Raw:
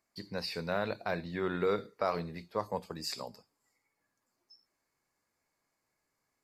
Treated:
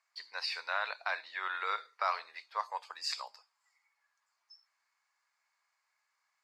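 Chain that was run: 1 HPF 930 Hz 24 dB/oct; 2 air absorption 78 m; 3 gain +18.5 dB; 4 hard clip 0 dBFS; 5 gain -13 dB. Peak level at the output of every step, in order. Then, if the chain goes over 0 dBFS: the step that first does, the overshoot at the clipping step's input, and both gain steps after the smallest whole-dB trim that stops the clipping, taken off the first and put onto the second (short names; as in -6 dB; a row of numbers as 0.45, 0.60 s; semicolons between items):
-21.5, -22.5, -4.0, -4.0, -17.0 dBFS; no overload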